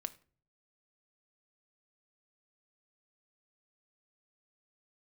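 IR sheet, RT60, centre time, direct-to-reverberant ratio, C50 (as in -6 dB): 0.45 s, 3 ms, 9.5 dB, 18.5 dB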